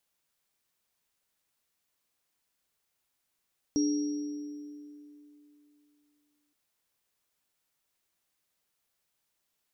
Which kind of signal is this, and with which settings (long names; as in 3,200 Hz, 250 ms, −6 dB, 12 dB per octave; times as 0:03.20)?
inharmonic partials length 2.77 s, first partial 294 Hz, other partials 420/5,630 Hz, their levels −14/−10 dB, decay 3.03 s, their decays 2.68/1.55 s, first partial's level −23 dB